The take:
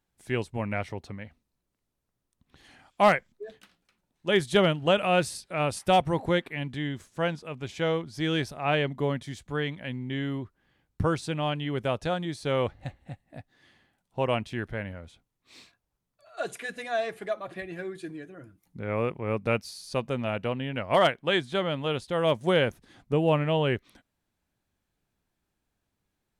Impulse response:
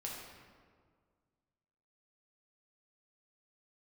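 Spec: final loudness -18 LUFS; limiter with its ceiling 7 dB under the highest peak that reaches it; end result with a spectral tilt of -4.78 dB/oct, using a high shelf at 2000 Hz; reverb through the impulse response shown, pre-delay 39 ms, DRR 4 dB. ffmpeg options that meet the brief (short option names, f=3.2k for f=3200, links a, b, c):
-filter_complex "[0:a]highshelf=f=2k:g=6.5,alimiter=limit=-14.5dB:level=0:latency=1,asplit=2[a][b];[1:a]atrim=start_sample=2205,adelay=39[c];[b][c]afir=irnorm=-1:irlink=0,volume=-3.5dB[d];[a][d]amix=inputs=2:normalize=0,volume=9dB"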